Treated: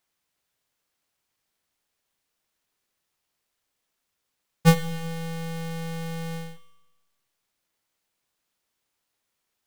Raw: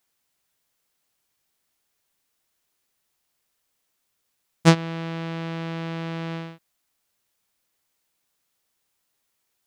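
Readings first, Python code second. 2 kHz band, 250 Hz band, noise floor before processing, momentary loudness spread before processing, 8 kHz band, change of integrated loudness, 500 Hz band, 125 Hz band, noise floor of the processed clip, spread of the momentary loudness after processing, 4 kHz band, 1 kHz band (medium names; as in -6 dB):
-3.0 dB, -2.5 dB, -76 dBFS, 14 LU, 0.0 dB, -1.5 dB, -2.0 dB, -0.5 dB, -80 dBFS, 14 LU, -3.5 dB, -2.5 dB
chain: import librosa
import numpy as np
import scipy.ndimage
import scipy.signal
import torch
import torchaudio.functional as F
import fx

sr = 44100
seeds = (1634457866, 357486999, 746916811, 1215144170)

y = fx.halfwave_hold(x, sr)
y = fx.rev_schroeder(y, sr, rt60_s=1.1, comb_ms=26, drr_db=12.5)
y = y * librosa.db_to_amplitude(-7.5)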